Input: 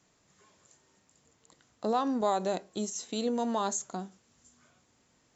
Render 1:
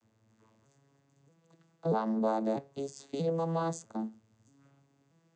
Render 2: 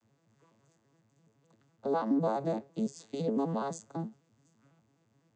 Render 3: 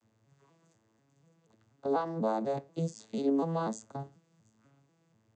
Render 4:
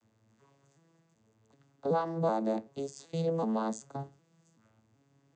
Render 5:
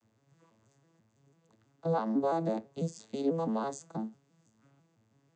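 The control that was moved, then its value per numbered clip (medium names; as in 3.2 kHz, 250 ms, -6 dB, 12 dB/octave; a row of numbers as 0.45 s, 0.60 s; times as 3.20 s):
vocoder on a broken chord, a note every: 638 ms, 84 ms, 244 ms, 380 ms, 165 ms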